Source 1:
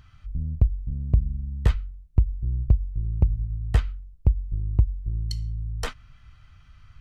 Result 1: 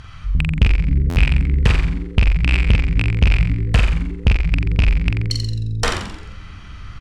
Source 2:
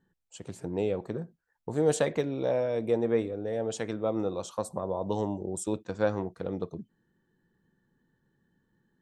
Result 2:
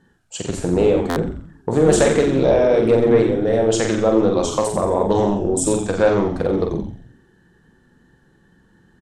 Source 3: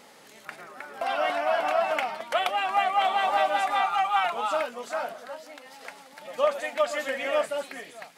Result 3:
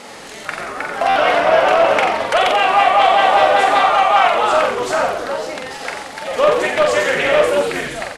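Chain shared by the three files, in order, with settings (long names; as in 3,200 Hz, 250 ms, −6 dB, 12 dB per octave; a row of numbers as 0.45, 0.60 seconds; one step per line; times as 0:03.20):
loose part that buzzes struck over −21 dBFS, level −15 dBFS
low-pass filter 11,000 Hz 24 dB per octave
low-shelf EQ 180 Hz −4 dB
in parallel at +3 dB: downward compressor, threshold −34 dBFS
on the sum: soft clipping −13.5 dBFS
double-tracking delay 45 ms −4.5 dB
echo with shifted repeats 88 ms, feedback 44%, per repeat −110 Hz, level −7 dB
buffer that repeats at 0:01.09, samples 512, times 5
highs frequency-modulated by the lows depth 0.17 ms
normalise the peak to −1.5 dBFS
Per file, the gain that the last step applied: +8.5, +8.5, +8.0 decibels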